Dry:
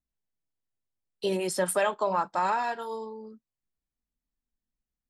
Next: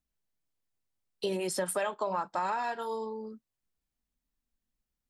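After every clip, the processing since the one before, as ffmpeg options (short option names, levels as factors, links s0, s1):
-af "acompressor=threshold=0.02:ratio=2.5,volume=1.33"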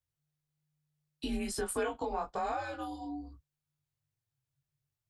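-af "afreqshift=-150,flanger=delay=19.5:depth=2.8:speed=1.2"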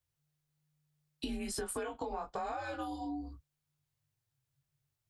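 -af "acompressor=threshold=0.0126:ratio=6,volume=1.41"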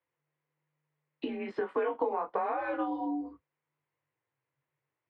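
-af "highpass=250,equalizer=f=320:t=q:w=4:g=7,equalizer=f=490:t=q:w=4:g=9,equalizer=f=1000:t=q:w=4:g=8,equalizer=f=2000:t=q:w=4:g=6,lowpass=f=2600:w=0.5412,lowpass=f=2600:w=1.3066,volume=1.41"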